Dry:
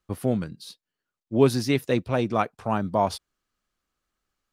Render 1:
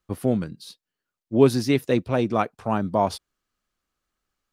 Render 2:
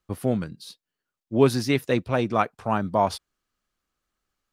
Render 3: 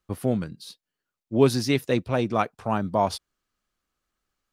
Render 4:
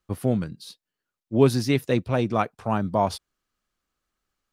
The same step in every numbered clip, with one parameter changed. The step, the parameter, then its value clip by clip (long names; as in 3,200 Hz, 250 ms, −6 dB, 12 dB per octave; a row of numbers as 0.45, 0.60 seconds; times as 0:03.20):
dynamic equaliser, frequency: 310, 1,500, 5,300, 110 Hertz